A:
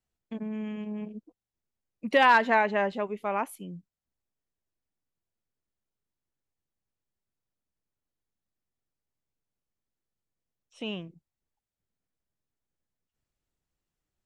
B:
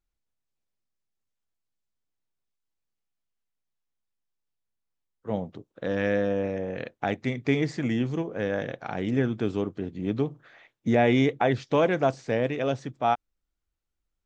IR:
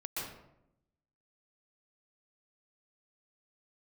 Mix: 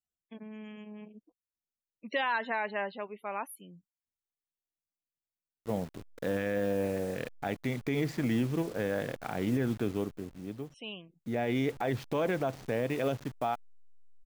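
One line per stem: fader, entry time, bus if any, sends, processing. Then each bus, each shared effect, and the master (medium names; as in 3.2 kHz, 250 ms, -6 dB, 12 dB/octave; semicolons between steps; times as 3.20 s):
-6.5 dB, 0.00 s, no send, tilt EQ +2 dB/octave; loudest bins only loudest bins 64
-2.0 dB, 0.40 s, no send, send-on-delta sampling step -40.5 dBFS; auto duck -14 dB, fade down 0.85 s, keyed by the first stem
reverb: none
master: peak limiter -20.5 dBFS, peak gain reduction 8.5 dB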